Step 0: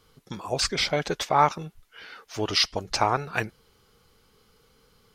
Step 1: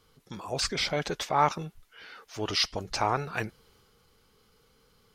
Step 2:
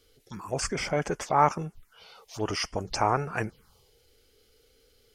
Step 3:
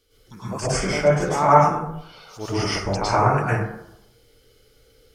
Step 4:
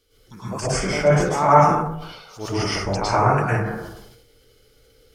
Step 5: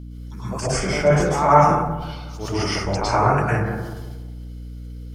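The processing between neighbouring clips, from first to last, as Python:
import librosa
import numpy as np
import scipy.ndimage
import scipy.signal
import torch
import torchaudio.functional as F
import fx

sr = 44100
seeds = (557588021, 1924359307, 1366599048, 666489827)

y1 = fx.transient(x, sr, attack_db=-3, sustain_db=3)
y1 = F.gain(torch.from_numpy(y1), -3.0).numpy()
y2 = fx.env_phaser(y1, sr, low_hz=160.0, high_hz=3900.0, full_db=-29.5)
y2 = F.gain(torch.from_numpy(y2), 3.0).numpy()
y3 = fx.rev_plate(y2, sr, seeds[0], rt60_s=0.78, hf_ratio=0.45, predelay_ms=95, drr_db=-9.5)
y3 = F.gain(torch.from_numpy(y3), -3.0).numpy()
y4 = fx.sustainer(y3, sr, db_per_s=52.0)
y5 = fx.add_hum(y4, sr, base_hz=60, snr_db=14)
y5 = fx.echo_filtered(y5, sr, ms=182, feedback_pct=44, hz=1400.0, wet_db=-12.5)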